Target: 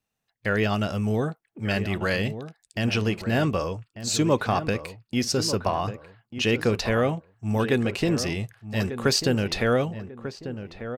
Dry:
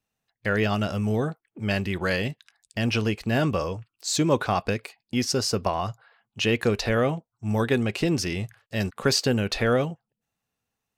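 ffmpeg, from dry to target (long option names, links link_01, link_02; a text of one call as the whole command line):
ffmpeg -i in.wav -filter_complex "[0:a]asplit=2[link_01][link_02];[link_02]adelay=1193,lowpass=frequency=1400:poles=1,volume=-10.5dB,asplit=2[link_03][link_04];[link_04]adelay=1193,lowpass=frequency=1400:poles=1,volume=0.36,asplit=2[link_05][link_06];[link_06]adelay=1193,lowpass=frequency=1400:poles=1,volume=0.36,asplit=2[link_07][link_08];[link_08]adelay=1193,lowpass=frequency=1400:poles=1,volume=0.36[link_09];[link_01][link_03][link_05][link_07][link_09]amix=inputs=5:normalize=0" out.wav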